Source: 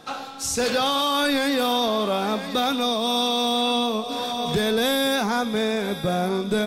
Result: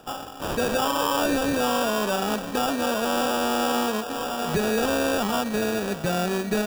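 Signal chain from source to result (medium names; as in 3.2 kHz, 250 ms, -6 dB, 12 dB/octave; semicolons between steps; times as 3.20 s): sample-rate reducer 2.1 kHz, jitter 0%; trim -1.5 dB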